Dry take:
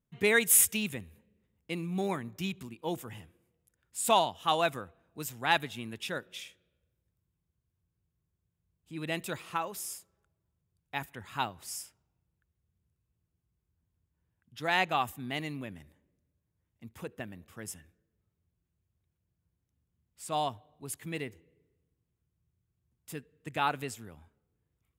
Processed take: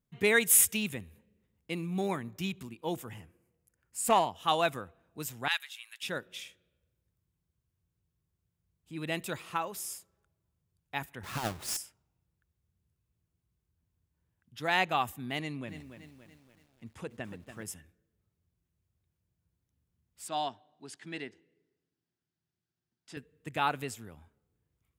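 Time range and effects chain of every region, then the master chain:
3.14–4.36 bell 3600 Hz -12 dB 0.34 oct + Doppler distortion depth 0.22 ms
5.48–6.03 Bessel high-pass 1900 Hz, order 4 + mismatched tape noise reduction encoder only
11.23–11.77 half-waves squared off + negative-ratio compressor -32 dBFS
15.39–17.63 LPF 10000 Hz 24 dB/oct + lo-fi delay 0.286 s, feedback 55%, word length 10-bit, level -9 dB
20.28–23.17 speaker cabinet 250–7300 Hz, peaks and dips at 530 Hz -7 dB, 1100 Hz -6 dB, 1600 Hz +4 dB, 2300 Hz -4 dB, 4800 Hz +4 dB, 7000 Hz -5 dB + notch 460 Hz, Q 11
whole clip: dry

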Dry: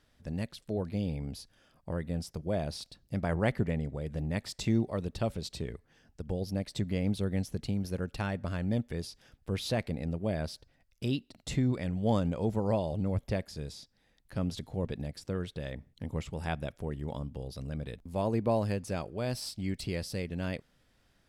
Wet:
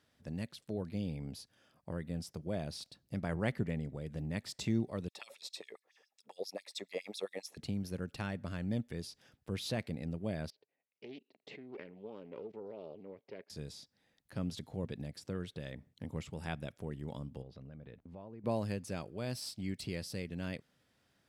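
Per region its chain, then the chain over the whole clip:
5.08–7.57 LFO high-pass sine 7.3 Hz 430–5500 Hz + notch comb 1500 Hz
10.5–13.5 level quantiser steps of 20 dB + speaker cabinet 340–3900 Hz, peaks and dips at 420 Hz +10 dB, 1400 Hz -8 dB, 2300 Hz +3 dB, 3500 Hz -6 dB + Doppler distortion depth 0.16 ms
17.42–18.44 LPF 2400 Hz + compressor, threshold -42 dBFS
whole clip: HPF 100 Hz; dynamic EQ 730 Hz, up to -4 dB, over -44 dBFS, Q 0.78; gain -3.5 dB

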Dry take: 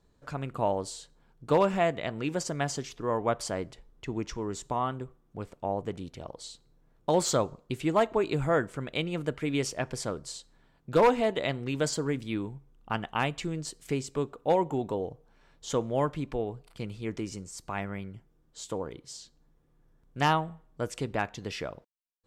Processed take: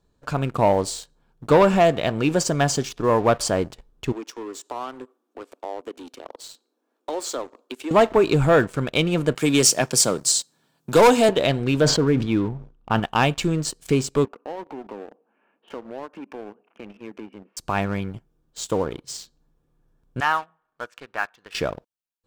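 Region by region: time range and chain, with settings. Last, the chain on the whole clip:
4.12–7.91 steep high-pass 240 Hz 72 dB/oct + compressor 2:1, threshold -47 dBFS
9.35–11.29 HPF 130 Hz 24 dB/oct + tone controls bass 0 dB, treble +13 dB
11.81–13 LPF 5200 Hz + high shelf 2700 Hz -8 dB + sustainer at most 80 dB/s
14.25–17.57 Chebyshev band-pass 200–2800 Hz, order 5 + compressor 3:1, threshold -46 dBFS
20.2–21.55 half-wave gain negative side -3 dB + upward compressor, threshold -48 dBFS + band-pass 1500 Hz, Q 1.7
whole clip: notch 2000 Hz, Q 7.8; sample leveller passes 2; gain +3.5 dB

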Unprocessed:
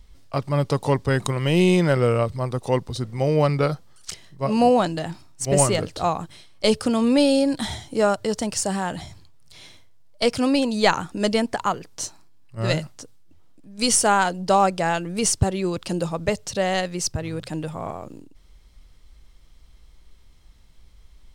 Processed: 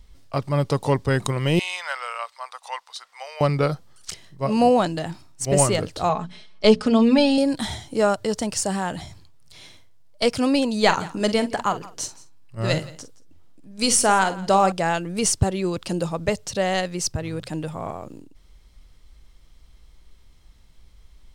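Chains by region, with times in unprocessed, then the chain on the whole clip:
1.59–3.41 inverse Chebyshev high-pass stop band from 330 Hz, stop band 50 dB + high shelf 11000 Hz -11 dB
6.09–7.38 LPF 4900 Hz + notches 60/120/180/240 Hz + comb 4.7 ms, depth 82%
10.78–14.72 short-mantissa float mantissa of 8-bit + doubler 47 ms -12 dB + echo 0.171 s -20 dB
whole clip: dry

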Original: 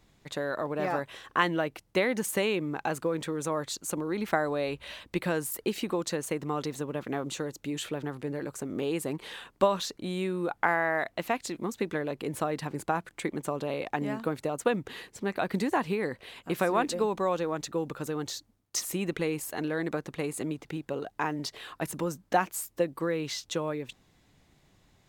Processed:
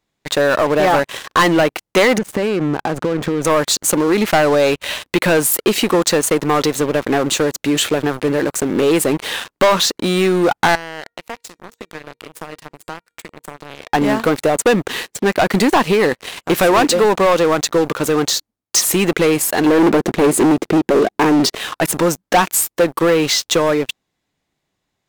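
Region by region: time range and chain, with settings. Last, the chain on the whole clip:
2.18–3.45 LPF 1400 Hz 6 dB/oct + compressor 8:1, threshold -36 dBFS + low shelf 280 Hz +10 dB
10.75–13.93 compressor 3:1, threshold -36 dBFS + resonator 470 Hz, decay 0.29 s, mix 70%
19.66–21.55 small resonant body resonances 220/350 Hz, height 12 dB, ringing for 25 ms + core saturation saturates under 820 Hz
whole clip: low shelf 160 Hz -11 dB; sample leveller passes 5; gain +2 dB

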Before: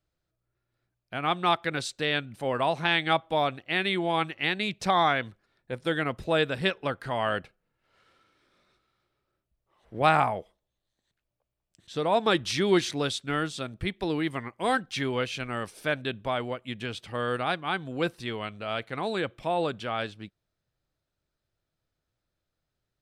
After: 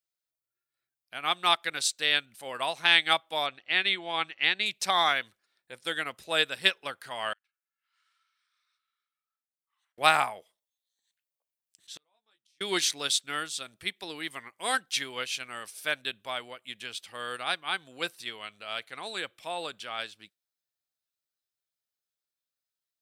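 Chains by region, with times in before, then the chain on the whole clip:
3.46–4.66 LPF 4800 Hz + upward compressor, threshold -41 dBFS
7.33–9.98 compressor 8:1, threshold -59 dBFS + ladder high-pass 980 Hz, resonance 35%
11.95–12.61 low shelf 220 Hz -4.5 dB + doubler 14 ms -4.5 dB + flipped gate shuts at -25 dBFS, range -42 dB
whole clip: spectral noise reduction 6 dB; tilt +4.5 dB/oct; upward expander 1.5:1, over -33 dBFS

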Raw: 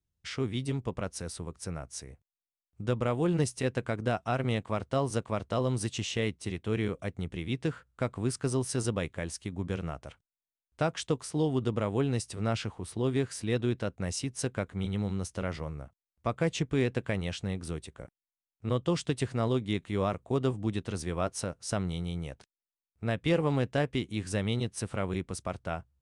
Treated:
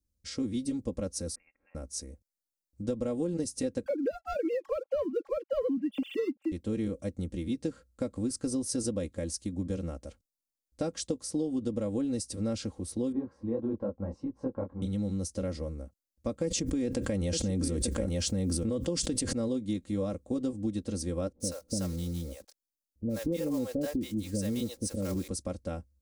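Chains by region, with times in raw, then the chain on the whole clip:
1.35–1.75 HPF 710 Hz 24 dB/oct + compressor 2.5:1, threshold -54 dBFS + inverted band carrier 3200 Hz
3.86–6.52 sine-wave speech + sample leveller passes 1
13.12–14.82 synth low-pass 980 Hz, resonance Q 5.4 + detuned doubles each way 56 cents
16.44–19.33 notch 3900 Hz, Q 14 + echo 0.886 s -16.5 dB + fast leveller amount 100%
21.32–25.28 block floating point 5-bit + bands offset in time lows, highs 80 ms, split 570 Hz
whole clip: band shelf 1600 Hz -13.5 dB 2.5 oct; comb 3.7 ms, depth 83%; compressor, threshold -29 dBFS; gain +1.5 dB

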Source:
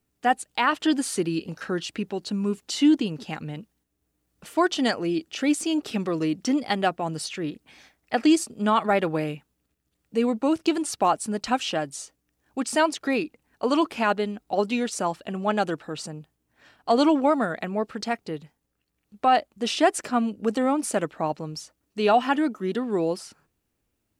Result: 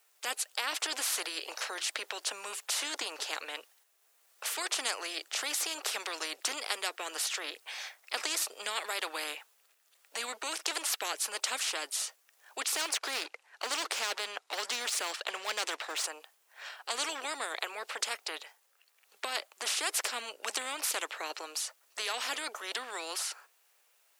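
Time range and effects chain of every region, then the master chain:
12.74–16.05 Bessel low-pass 7000 Hz + sample leveller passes 1
whole clip: Bessel high-pass 890 Hz, order 8; spectral compressor 4:1; gain -2.5 dB

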